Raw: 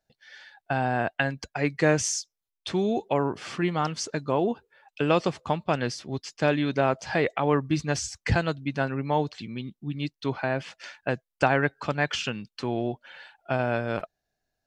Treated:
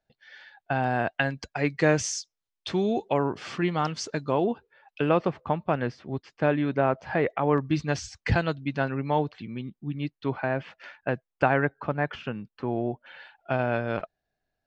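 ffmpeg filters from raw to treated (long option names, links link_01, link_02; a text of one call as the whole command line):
ffmpeg -i in.wav -af "asetnsamples=nb_out_samples=441:pad=0,asendcmd='0.84 lowpass f 6300;4.44 lowpass f 3700;5.09 lowpass f 2000;7.58 lowpass f 4500;9.19 lowpass f 2400;11.65 lowpass f 1500;13.06 lowpass f 3700',lowpass=3800" out.wav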